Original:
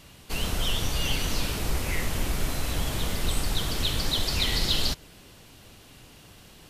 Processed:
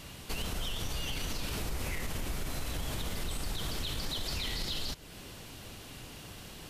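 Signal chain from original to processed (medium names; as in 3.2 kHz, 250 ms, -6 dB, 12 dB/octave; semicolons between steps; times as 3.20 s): peak limiter -21.5 dBFS, peak gain reduction 8.5 dB; compression 2:1, threshold -42 dBFS, peak gain reduction 9 dB; trim +3.5 dB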